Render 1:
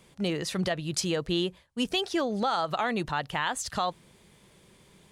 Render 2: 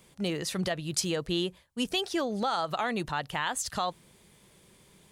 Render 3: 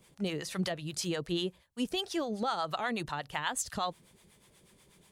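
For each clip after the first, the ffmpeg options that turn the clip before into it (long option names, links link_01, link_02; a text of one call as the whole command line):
ffmpeg -i in.wav -af "highshelf=frequency=8700:gain=8.5,volume=-2dB" out.wav
ffmpeg -i in.wav -filter_complex "[0:a]acrossover=split=620[link_01][link_02];[link_01]aeval=exprs='val(0)*(1-0.7/2+0.7/2*cos(2*PI*8.2*n/s))':channel_layout=same[link_03];[link_02]aeval=exprs='val(0)*(1-0.7/2-0.7/2*cos(2*PI*8.2*n/s))':channel_layout=same[link_04];[link_03][link_04]amix=inputs=2:normalize=0" out.wav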